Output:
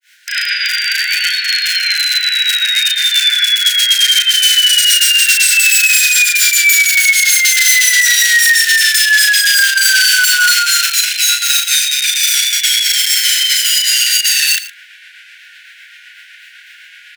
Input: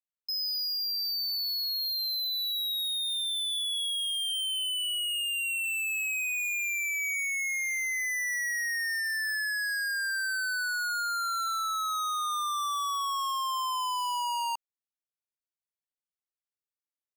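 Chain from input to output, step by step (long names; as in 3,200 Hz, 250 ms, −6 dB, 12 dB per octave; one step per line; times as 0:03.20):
spectral envelope flattened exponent 0.1
low-pass filter 2,900 Hz 24 dB per octave
reversed playback
upward compression, threshold −38 dBFS
reversed playback
background noise brown −57 dBFS
frequency shifter −66 Hz
wrap-around overflow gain 34.5 dB
granular cloud 230 ms, grains 7.9 per second, spray 29 ms, pitch spread up and down by 0 semitones
linear-phase brick-wall high-pass 1,400 Hz
double-tracking delay 35 ms −2.5 dB
on a send: single-tap delay 115 ms −16.5 dB
on the sum: boost into a limiter +31.5 dB
level −1 dB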